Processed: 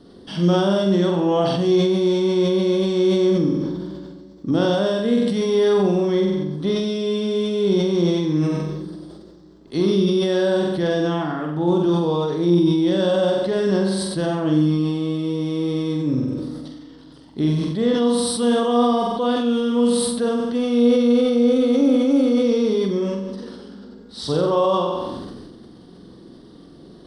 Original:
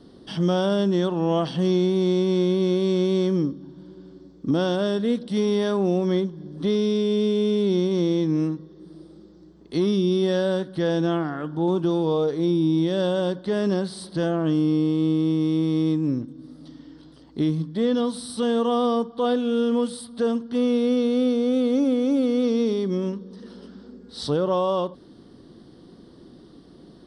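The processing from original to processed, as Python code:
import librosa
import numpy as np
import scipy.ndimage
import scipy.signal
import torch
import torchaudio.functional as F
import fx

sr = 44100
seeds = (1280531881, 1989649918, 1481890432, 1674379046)

y = fx.room_flutter(x, sr, wall_m=7.9, rt60_s=0.73)
y = fx.sustainer(y, sr, db_per_s=30.0)
y = y * librosa.db_to_amplitude(1.0)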